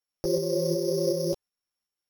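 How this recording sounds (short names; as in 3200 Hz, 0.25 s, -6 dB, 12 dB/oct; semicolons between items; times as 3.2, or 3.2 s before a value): a buzz of ramps at a fixed pitch in blocks of 8 samples; tremolo saw up 2.7 Hz, depth 40%; a shimmering, thickened sound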